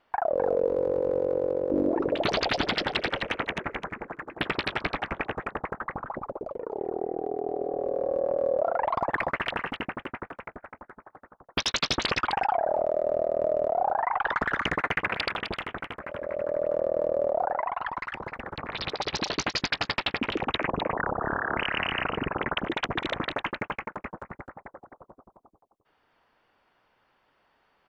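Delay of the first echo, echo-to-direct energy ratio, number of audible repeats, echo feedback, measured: 257 ms, −7.5 dB, 1, repeats not evenly spaced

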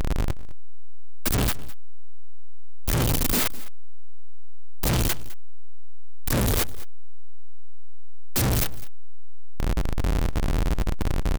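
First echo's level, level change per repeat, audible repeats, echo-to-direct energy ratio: −19.0 dB, repeats not evenly spaced, 1, −19.0 dB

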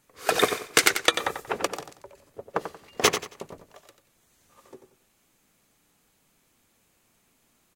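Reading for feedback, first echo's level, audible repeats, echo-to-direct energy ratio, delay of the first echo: 28%, −9.0 dB, 3, −8.5 dB, 91 ms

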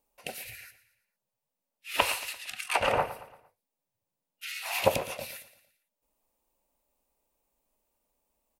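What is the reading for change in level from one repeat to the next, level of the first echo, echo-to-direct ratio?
−7.0 dB, −15.0 dB, −14.0 dB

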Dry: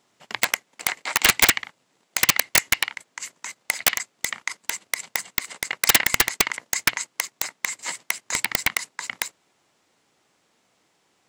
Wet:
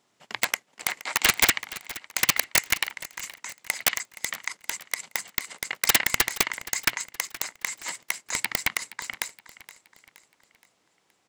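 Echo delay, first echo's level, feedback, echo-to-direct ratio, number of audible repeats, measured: 471 ms, −17.0 dB, 45%, −16.0 dB, 3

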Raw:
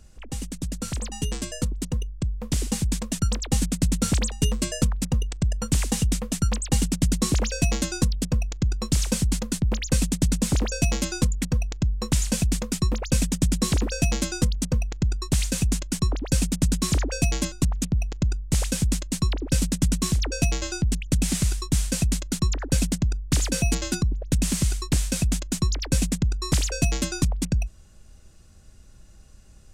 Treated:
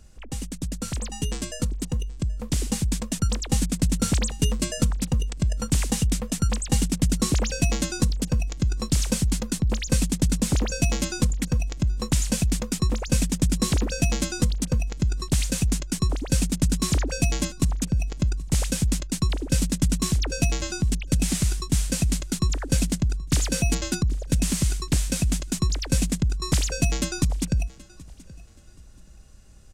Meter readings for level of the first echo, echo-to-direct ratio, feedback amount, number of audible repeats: −22.0 dB, −21.5 dB, 30%, 2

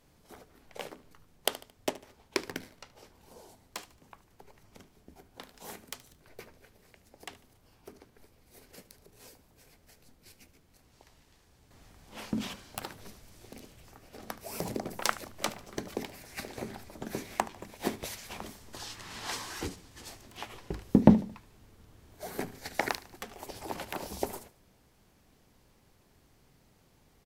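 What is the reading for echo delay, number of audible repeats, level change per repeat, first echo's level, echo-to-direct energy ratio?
74 ms, 3, −8.0 dB, −18.0 dB, −17.5 dB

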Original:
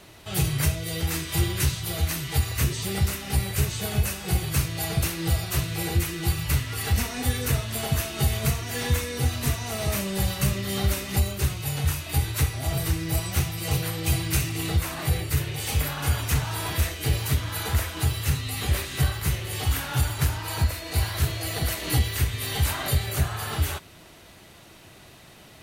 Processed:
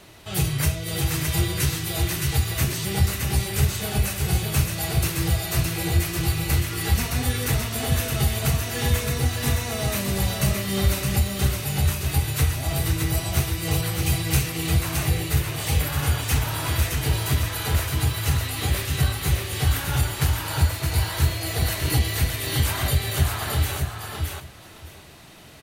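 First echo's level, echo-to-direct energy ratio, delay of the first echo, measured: −4.0 dB, −4.0 dB, 617 ms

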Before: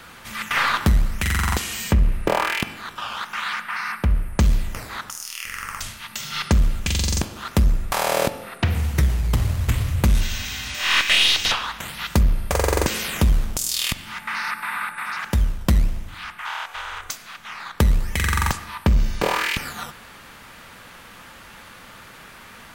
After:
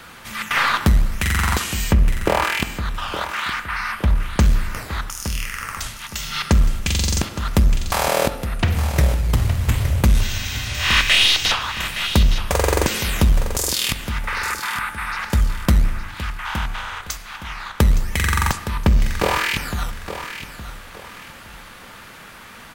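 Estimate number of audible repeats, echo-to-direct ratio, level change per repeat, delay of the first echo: 3, −10.5 dB, −10.0 dB, 866 ms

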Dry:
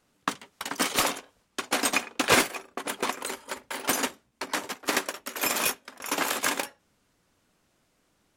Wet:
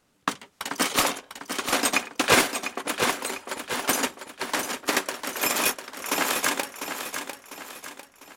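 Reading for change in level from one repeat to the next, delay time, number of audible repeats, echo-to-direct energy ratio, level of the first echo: −7.5 dB, 699 ms, 4, −7.0 dB, −8.0 dB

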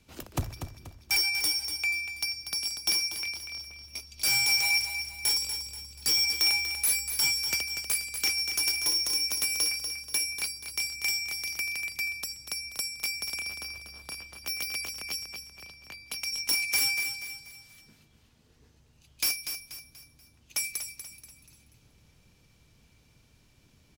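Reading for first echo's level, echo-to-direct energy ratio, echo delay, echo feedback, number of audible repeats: −8.5 dB, −7.5 dB, 241 ms, 40%, 4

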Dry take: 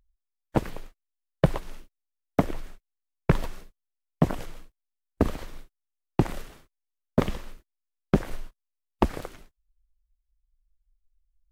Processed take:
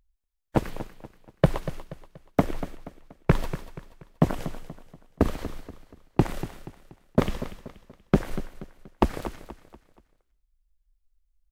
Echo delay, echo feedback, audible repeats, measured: 239 ms, 40%, 3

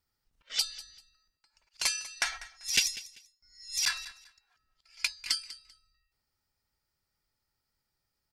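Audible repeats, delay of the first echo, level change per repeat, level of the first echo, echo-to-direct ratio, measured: 2, 195 ms, −12.5 dB, −17.5 dB, −17.5 dB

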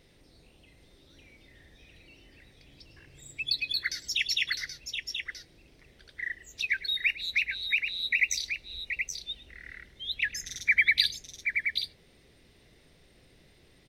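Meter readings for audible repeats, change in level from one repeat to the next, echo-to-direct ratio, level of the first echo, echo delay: 2, repeats not evenly spaced, −6.0 dB, −18.0 dB, 104 ms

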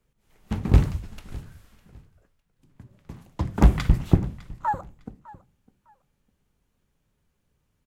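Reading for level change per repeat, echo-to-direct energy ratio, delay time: −12.5 dB, −20.5 dB, 605 ms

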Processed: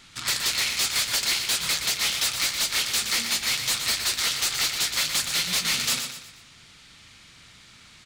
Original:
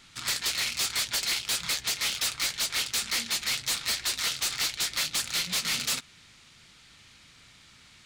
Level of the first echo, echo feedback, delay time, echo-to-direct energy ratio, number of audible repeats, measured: −7.5 dB, 39%, 120 ms, −7.0 dB, 4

